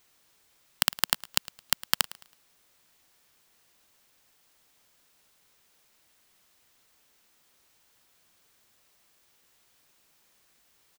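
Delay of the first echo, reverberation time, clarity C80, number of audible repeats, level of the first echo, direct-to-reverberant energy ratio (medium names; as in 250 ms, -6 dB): 108 ms, no reverb, no reverb, 2, -19.0 dB, no reverb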